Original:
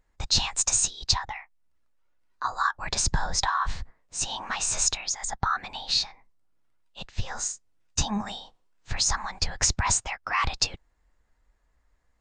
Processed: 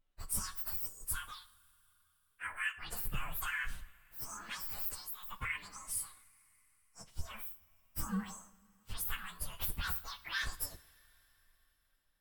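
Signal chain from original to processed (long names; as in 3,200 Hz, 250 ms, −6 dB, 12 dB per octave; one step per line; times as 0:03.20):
partials spread apart or drawn together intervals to 128%
coupled-rooms reverb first 0.49 s, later 3.9 s, from −18 dB, DRR 11.5 dB
level −7.5 dB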